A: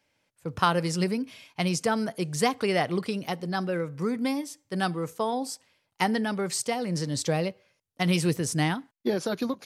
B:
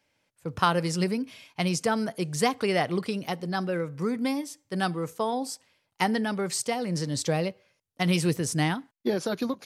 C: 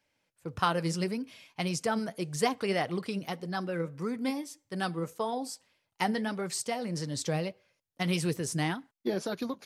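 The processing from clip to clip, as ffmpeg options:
-af anull
-af "flanger=delay=0.5:depth=5.9:regen=70:speed=1.7:shape=triangular"

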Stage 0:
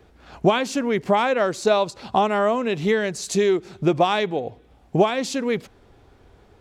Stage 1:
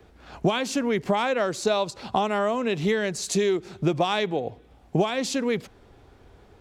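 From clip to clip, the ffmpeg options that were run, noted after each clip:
-filter_complex "[0:a]acrossover=split=140|3000[a][b][c];[b]acompressor=threshold=-22dB:ratio=2.5[d];[a][d][c]amix=inputs=3:normalize=0"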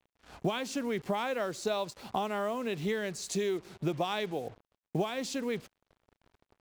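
-af "acrusher=bits=6:mix=0:aa=0.5,volume=-8.5dB"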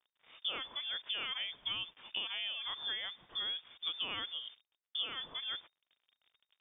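-af "lowpass=f=3.1k:t=q:w=0.5098,lowpass=f=3.1k:t=q:w=0.6013,lowpass=f=3.1k:t=q:w=0.9,lowpass=f=3.1k:t=q:w=2.563,afreqshift=-3700,highshelf=f=2.4k:g=-9,volume=-1.5dB"

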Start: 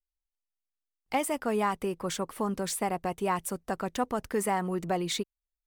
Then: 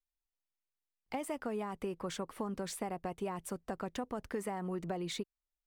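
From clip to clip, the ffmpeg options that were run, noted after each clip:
-filter_complex "[0:a]highshelf=f=6.4k:g=-9,acrossover=split=640|7400[a][b][c];[b]alimiter=level_in=3.5dB:limit=-24dB:level=0:latency=1:release=132,volume=-3.5dB[d];[a][d][c]amix=inputs=3:normalize=0,acompressor=threshold=-30dB:ratio=6,volume=-3.5dB"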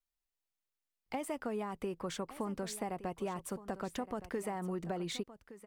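-af "aecho=1:1:1167:0.178"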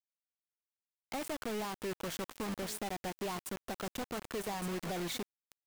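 -af "asoftclip=type=tanh:threshold=-38.5dB,acrusher=bits=6:mix=0:aa=0.000001,volume=2dB"

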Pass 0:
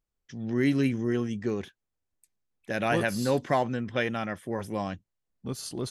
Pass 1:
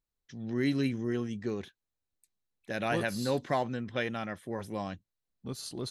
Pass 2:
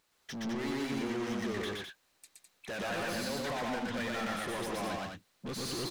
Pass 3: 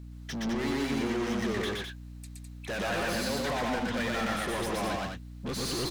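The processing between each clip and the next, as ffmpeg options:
-af "equalizer=f=4k:w=6.6:g=8,volume=-4.5dB"
-filter_complex "[0:a]alimiter=level_in=3dB:limit=-24dB:level=0:latency=1,volume=-3dB,asplit=2[a][b];[b]highpass=f=720:p=1,volume=34dB,asoftclip=type=tanh:threshold=-27dB[c];[a][c]amix=inputs=2:normalize=0,lowpass=f=4.5k:p=1,volume=-6dB,aecho=1:1:119.5|207:0.891|0.562,volume=-5.5dB"
-af "aeval=exprs='val(0)+0.00447*(sin(2*PI*60*n/s)+sin(2*PI*2*60*n/s)/2+sin(2*PI*3*60*n/s)/3+sin(2*PI*4*60*n/s)/4+sin(2*PI*5*60*n/s)/5)':c=same,volume=4.5dB"

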